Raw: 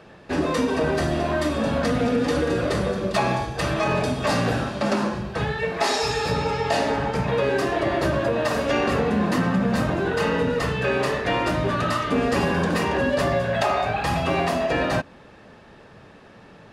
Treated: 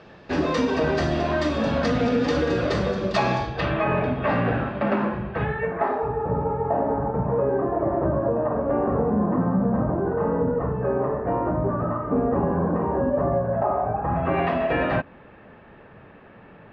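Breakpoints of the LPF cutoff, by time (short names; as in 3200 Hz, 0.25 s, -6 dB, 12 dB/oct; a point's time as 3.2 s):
LPF 24 dB/oct
3.37 s 5900 Hz
3.85 s 2500 Hz
5.43 s 2500 Hz
6.14 s 1100 Hz
14.02 s 1100 Hz
14.46 s 2700 Hz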